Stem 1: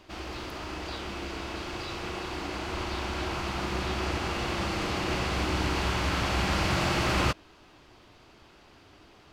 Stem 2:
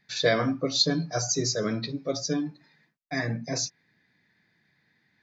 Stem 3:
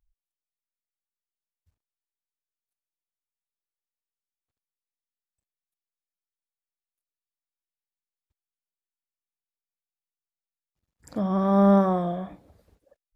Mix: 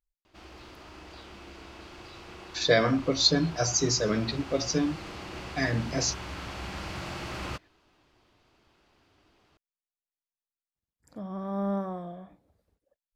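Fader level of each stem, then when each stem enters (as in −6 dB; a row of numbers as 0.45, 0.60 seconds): −10.5, +1.0, −12.0 decibels; 0.25, 2.45, 0.00 seconds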